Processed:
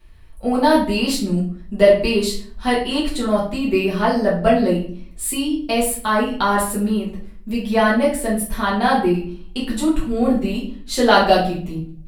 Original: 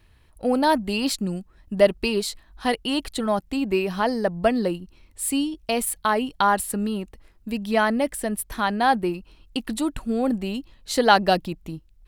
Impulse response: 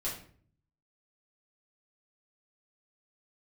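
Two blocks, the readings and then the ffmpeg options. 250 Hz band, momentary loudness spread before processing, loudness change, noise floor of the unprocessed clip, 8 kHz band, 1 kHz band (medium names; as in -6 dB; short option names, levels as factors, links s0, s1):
+6.0 dB, 12 LU, +5.0 dB, -56 dBFS, +3.5 dB, +3.0 dB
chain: -filter_complex "[1:a]atrim=start_sample=2205[s0];[0:a][s0]afir=irnorm=-1:irlink=0,volume=1.19"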